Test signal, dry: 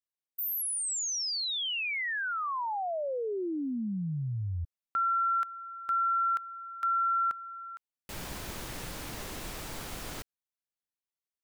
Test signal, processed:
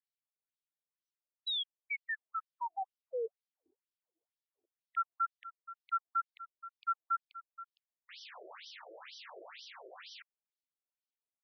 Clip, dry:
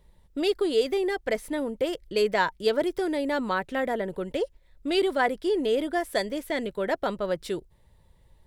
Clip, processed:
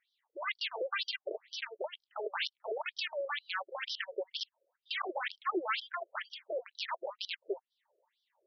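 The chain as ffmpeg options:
-af "aeval=exprs='(mod(11.9*val(0)+1,2)-1)/11.9':c=same,afftfilt=real='re*between(b*sr/1024,470*pow(4300/470,0.5+0.5*sin(2*PI*2.1*pts/sr))/1.41,470*pow(4300/470,0.5+0.5*sin(2*PI*2.1*pts/sr))*1.41)':imag='im*between(b*sr/1024,470*pow(4300/470,0.5+0.5*sin(2*PI*2.1*pts/sr))/1.41,470*pow(4300/470,0.5+0.5*sin(2*PI*2.1*pts/sr))*1.41)':win_size=1024:overlap=0.75,volume=-1.5dB"

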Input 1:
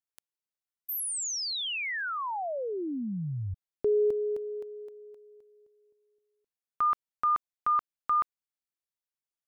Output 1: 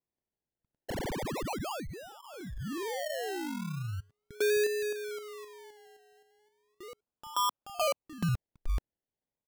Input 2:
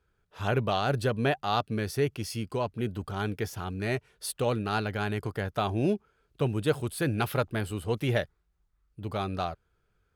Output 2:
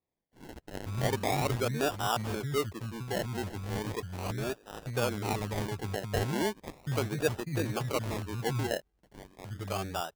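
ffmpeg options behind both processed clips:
-filter_complex "[0:a]acrossover=split=210|2000[a][b][c];[a]adelay=460[d];[b]adelay=560[e];[d][e][c]amix=inputs=3:normalize=0,acrusher=samples=29:mix=1:aa=0.000001:lfo=1:lforange=17.4:lforate=0.37,volume=-2dB"

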